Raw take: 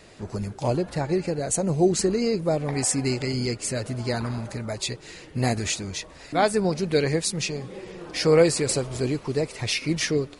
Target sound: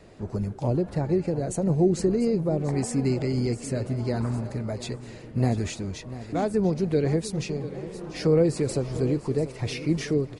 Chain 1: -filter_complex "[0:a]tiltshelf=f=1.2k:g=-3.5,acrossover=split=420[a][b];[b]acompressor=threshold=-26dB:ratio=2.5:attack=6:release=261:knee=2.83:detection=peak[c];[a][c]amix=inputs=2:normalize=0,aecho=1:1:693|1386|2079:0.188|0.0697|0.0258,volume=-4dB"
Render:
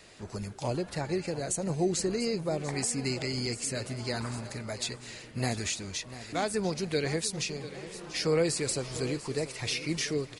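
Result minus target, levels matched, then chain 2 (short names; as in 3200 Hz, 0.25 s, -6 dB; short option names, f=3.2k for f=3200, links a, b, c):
1000 Hz band +3.5 dB
-filter_complex "[0:a]tiltshelf=f=1.2k:g=6,acrossover=split=420[a][b];[b]acompressor=threshold=-26dB:ratio=2.5:attack=6:release=261:knee=2.83:detection=peak[c];[a][c]amix=inputs=2:normalize=0,aecho=1:1:693|1386|2079:0.188|0.0697|0.0258,volume=-4dB"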